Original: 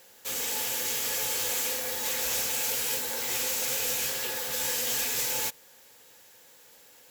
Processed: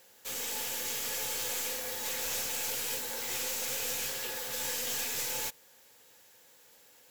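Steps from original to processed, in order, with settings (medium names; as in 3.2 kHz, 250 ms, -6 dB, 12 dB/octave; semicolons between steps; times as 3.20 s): tracing distortion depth 0.02 ms; trim -4.5 dB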